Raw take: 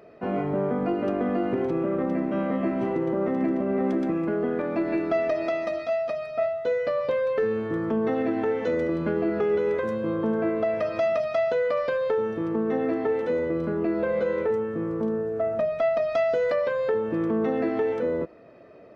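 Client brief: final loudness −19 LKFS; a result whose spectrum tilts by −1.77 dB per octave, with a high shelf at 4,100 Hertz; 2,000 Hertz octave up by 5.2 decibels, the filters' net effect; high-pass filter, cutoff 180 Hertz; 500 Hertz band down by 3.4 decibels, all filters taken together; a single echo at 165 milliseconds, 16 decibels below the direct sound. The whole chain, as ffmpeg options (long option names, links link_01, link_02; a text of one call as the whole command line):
ffmpeg -i in.wav -af "highpass=180,equalizer=frequency=500:width_type=o:gain=-4.5,equalizer=frequency=2000:width_type=o:gain=8,highshelf=frequency=4100:gain=-8,aecho=1:1:165:0.158,volume=9dB" out.wav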